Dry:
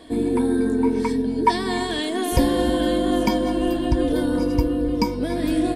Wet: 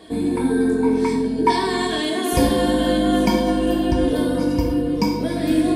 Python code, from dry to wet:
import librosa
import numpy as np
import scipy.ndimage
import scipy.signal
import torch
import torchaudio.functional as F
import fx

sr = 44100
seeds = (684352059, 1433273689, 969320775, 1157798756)

y = scipy.signal.sosfilt(scipy.signal.butter(2, 46.0, 'highpass', fs=sr, output='sos'), x)
y = fx.rev_gated(y, sr, seeds[0], gate_ms=230, shape='falling', drr_db=0.5)